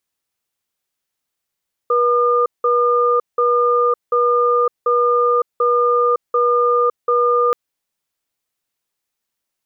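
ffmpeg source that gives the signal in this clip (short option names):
-f lavfi -i "aevalsrc='0.178*(sin(2*PI*483*t)+sin(2*PI*1210*t))*clip(min(mod(t,0.74),0.56-mod(t,0.74))/0.005,0,1)':d=5.63:s=44100"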